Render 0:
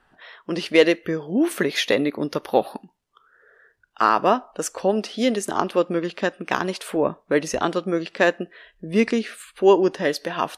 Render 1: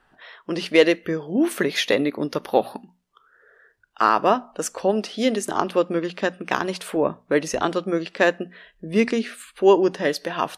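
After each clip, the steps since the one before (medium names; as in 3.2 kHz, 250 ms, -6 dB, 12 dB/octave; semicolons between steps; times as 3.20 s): hum notches 60/120/180/240 Hz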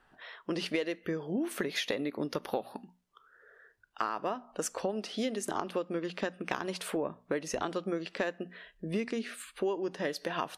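compression 10:1, threshold -25 dBFS, peak gain reduction 16 dB; trim -4 dB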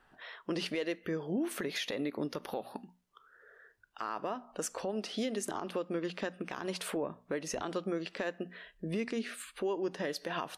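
peak limiter -25 dBFS, peak gain reduction 10 dB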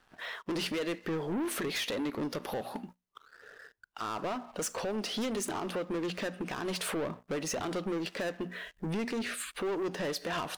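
waveshaping leveller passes 3; trim -3.5 dB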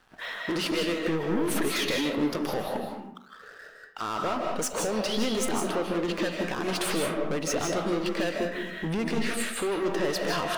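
algorithmic reverb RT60 0.68 s, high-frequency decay 0.65×, pre-delay 115 ms, DRR 1 dB; trim +4 dB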